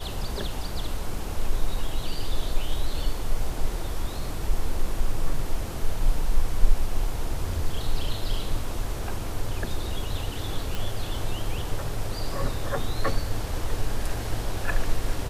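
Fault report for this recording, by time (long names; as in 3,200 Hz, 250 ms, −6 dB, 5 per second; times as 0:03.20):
0:10.75: click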